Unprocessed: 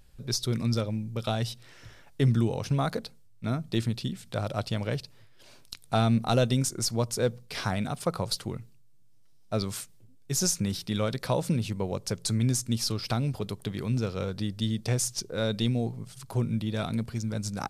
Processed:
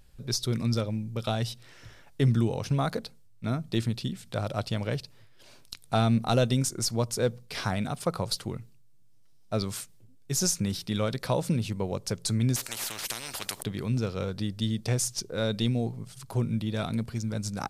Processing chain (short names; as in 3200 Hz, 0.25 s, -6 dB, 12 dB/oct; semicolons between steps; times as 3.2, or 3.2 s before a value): 12.56–13.63 spectral compressor 10:1